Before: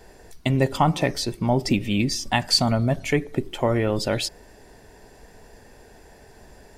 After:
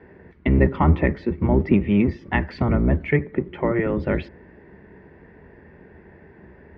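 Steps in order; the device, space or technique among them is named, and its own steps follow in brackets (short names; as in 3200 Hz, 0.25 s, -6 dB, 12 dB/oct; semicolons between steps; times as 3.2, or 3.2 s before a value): 3.15–3.97 dynamic EQ 110 Hz, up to -8 dB, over -39 dBFS, Q 0.7; sub-octave bass pedal (octaver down 1 oct, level +4 dB; speaker cabinet 71–2200 Hz, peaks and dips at 79 Hz +6 dB, 110 Hz -10 dB, 190 Hz +4 dB, 360 Hz +6 dB, 720 Hz -7 dB, 2000 Hz +6 dB)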